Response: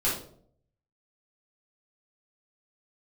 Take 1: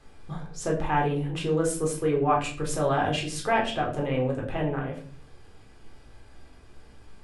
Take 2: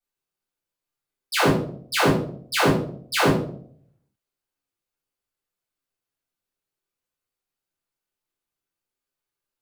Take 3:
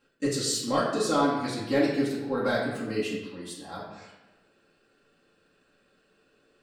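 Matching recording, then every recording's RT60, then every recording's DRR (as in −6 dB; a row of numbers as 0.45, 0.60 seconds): 2; 0.45, 0.60, 1.1 seconds; −2.0, −9.5, −7.0 decibels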